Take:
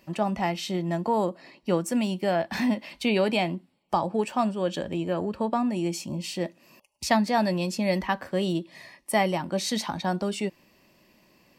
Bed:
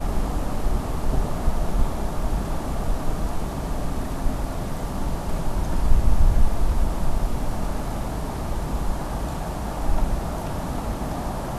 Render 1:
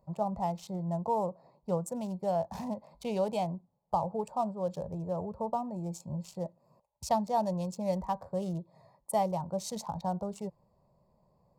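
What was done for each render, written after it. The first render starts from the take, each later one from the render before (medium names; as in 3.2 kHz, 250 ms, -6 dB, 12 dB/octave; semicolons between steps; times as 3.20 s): local Wiener filter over 15 samples; FFT filter 150 Hz 0 dB, 310 Hz -21 dB, 460 Hz -5 dB, 950 Hz -3 dB, 1.7 kHz -24 dB, 7.2 kHz -4 dB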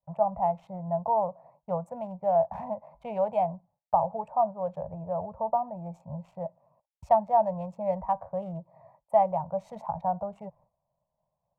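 FFT filter 150 Hz 0 dB, 370 Hz -14 dB, 650 Hz +9 dB, 1.3 kHz +1 dB, 2.3 kHz -1 dB, 4.6 kHz -24 dB; expander -55 dBFS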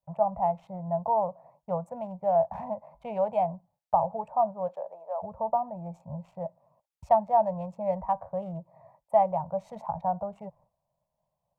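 4.67–5.22 s: high-pass 290 Hz -> 640 Hz 24 dB/octave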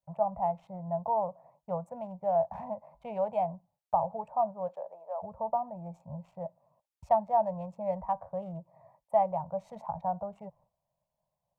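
trim -3.5 dB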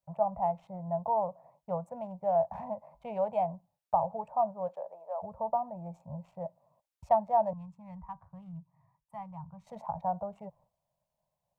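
7.53–9.67 s: FFT filter 150 Hz 0 dB, 590 Hz -28 dB, 1 kHz -7 dB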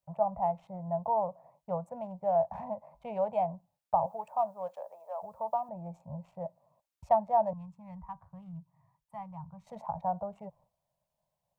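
4.06–5.69 s: tilt EQ +3.5 dB/octave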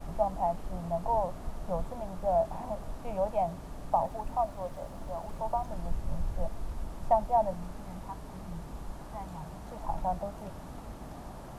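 add bed -16 dB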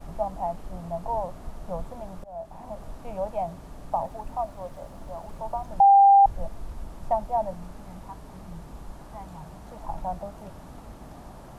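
2.24–2.83 s: fade in, from -22 dB; 5.80–6.26 s: bleep 794 Hz -11 dBFS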